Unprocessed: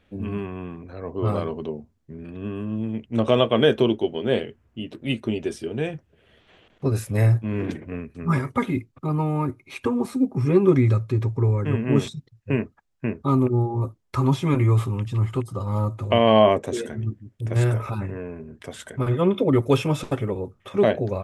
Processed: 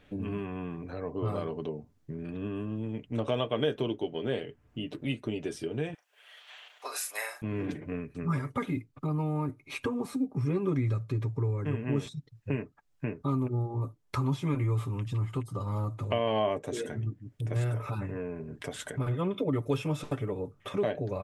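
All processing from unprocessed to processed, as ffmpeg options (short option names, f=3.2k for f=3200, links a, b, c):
-filter_complex "[0:a]asettb=1/sr,asplit=3[a][b][c];[a]atrim=end=5.944[d];[b]atrim=start=5.94:end=7.42,asetpts=PTS-STARTPTS,afade=t=in:d=0.004:c=qsin,afade=t=out:st=1.476:d=0.004:c=qsin,highpass=f=750:w=0.5412,highpass=f=750:w=1.3066,highshelf=f=3.1k:g=8,asplit=2[e][f];[f]adelay=38,volume=-7.5dB[g];[e][g]amix=inputs=2:normalize=0,atrim=end_sample=65268[h];[c]atrim=start=7.416[i];[d][h]acrossfade=d=0.004:c1=hsin:c2=qsin[j];[j][i]acrossfade=d=0.004:c1=qsin:c2=hsin,aecho=1:1:6.8:0.38,acompressor=threshold=-40dB:ratio=2,volume=2.5dB"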